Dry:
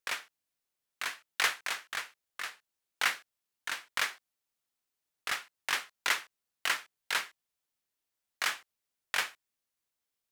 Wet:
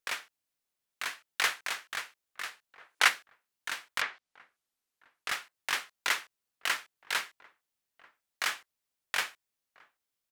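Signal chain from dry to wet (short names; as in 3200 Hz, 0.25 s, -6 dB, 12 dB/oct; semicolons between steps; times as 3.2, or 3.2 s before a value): outdoor echo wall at 230 m, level -22 dB; 2.8–3.08 spectral gain 310–12000 Hz +6 dB; 4–5.29 treble ducked by the level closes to 2700 Hz, closed at -31 dBFS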